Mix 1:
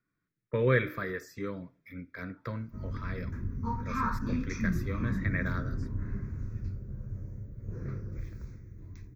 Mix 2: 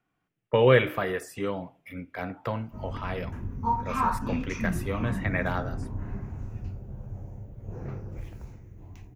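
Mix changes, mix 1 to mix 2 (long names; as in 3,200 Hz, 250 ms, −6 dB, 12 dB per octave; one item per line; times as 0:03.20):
speech +3.0 dB
master: remove phaser with its sweep stopped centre 2,900 Hz, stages 6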